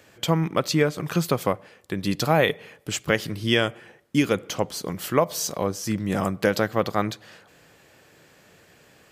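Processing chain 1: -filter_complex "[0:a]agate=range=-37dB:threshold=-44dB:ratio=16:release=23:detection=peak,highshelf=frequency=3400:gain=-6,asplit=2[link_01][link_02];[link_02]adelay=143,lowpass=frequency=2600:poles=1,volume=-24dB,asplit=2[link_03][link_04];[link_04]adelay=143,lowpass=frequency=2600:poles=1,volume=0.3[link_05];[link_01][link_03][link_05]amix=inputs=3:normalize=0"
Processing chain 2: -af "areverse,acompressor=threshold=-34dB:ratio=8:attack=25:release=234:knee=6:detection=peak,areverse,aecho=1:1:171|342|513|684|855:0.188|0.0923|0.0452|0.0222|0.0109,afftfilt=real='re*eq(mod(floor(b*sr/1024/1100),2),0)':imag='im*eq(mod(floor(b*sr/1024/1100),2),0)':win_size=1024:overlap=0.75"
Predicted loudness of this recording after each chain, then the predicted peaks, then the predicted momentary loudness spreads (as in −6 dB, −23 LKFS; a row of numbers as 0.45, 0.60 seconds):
−25.5, −37.5 LKFS; −6.5, −18.0 dBFS; 9, 19 LU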